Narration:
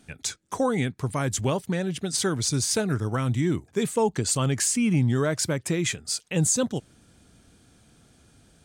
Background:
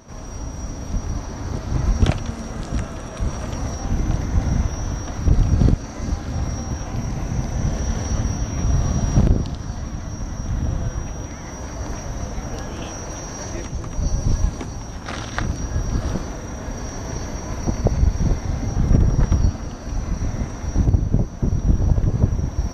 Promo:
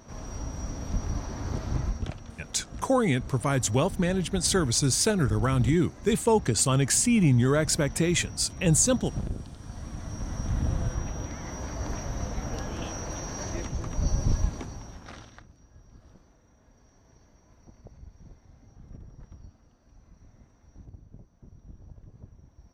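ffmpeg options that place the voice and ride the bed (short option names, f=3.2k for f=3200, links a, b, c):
-filter_complex "[0:a]adelay=2300,volume=1dB[a];[1:a]volume=7dB,afade=t=out:st=1.66:d=0.36:silence=0.266073,afade=t=in:st=9.51:d=0.9:silence=0.251189,afade=t=out:st=14.18:d=1.26:silence=0.0501187[b];[a][b]amix=inputs=2:normalize=0"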